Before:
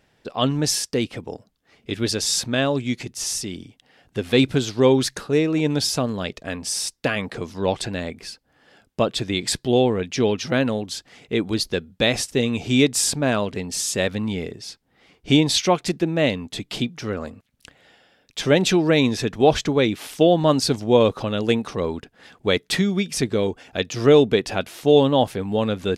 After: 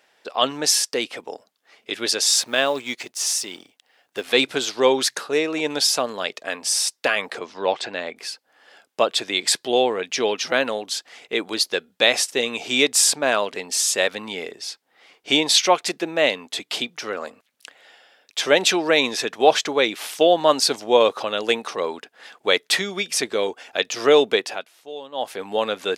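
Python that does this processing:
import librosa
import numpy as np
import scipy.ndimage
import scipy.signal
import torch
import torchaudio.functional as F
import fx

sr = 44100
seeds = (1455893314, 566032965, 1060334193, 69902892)

y = fx.law_mismatch(x, sr, coded='A', at=(2.29, 4.28))
y = fx.air_absorb(y, sr, metres=110.0, at=(7.39, 8.16))
y = fx.edit(y, sr, fx.fade_down_up(start_s=24.35, length_s=1.1, db=-19.5, fade_s=0.33), tone=tone)
y = scipy.signal.sosfilt(scipy.signal.butter(2, 560.0, 'highpass', fs=sr, output='sos'), y)
y = y * 10.0 ** (4.5 / 20.0)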